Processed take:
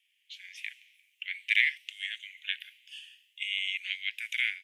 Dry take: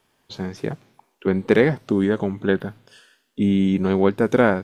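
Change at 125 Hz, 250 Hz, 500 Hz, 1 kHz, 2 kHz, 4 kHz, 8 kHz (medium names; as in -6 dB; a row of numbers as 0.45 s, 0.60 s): under -40 dB, under -40 dB, under -40 dB, under -35 dB, -1.0 dB, +5.5 dB, no reading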